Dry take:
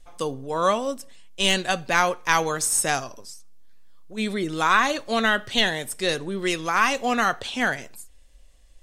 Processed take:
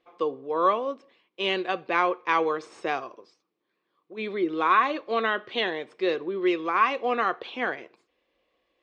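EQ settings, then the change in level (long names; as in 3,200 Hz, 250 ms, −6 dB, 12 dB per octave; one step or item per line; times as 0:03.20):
loudspeaker in its box 220–3,900 Hz, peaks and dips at 330 Hz +8 dB, 480 Hz +9 dB, 730 Hz +3 dB, 1,100 Hz +10 dB, 2,300 Hz +6 dB
parametric band 370 Hz +6.5 dB 0.26 octaves
−8.5 dB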